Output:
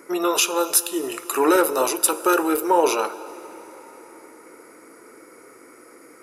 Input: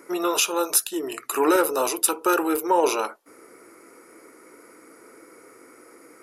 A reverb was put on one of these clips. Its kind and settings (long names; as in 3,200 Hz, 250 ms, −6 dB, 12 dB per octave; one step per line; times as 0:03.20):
dense smooth reverb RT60 4.7 s, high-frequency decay 0.7×, DRR 14.5 dB
level +2 dB